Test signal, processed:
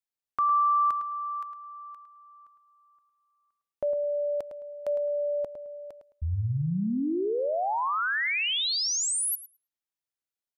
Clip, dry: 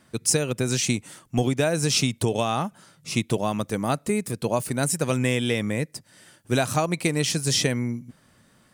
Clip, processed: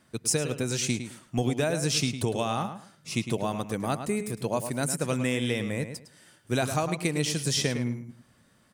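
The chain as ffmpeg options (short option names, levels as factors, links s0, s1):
-filter_complex "[0:a]asplit=2[s0][s1];[s1]adelay=107,lowpass=f=4600:p=1,volume=0.355,asplit=2[s2][s3];[s3]adelay=107,lowpass=f=4600:p=1,volume=0.23,asplit=2[s4][s5];[s5]adelay=107,lowpass=f=4600:p=1,volume=0.23[s6];[s0][s2][s4][s6]amix=inputs=4:normalize=0,volume=0.596"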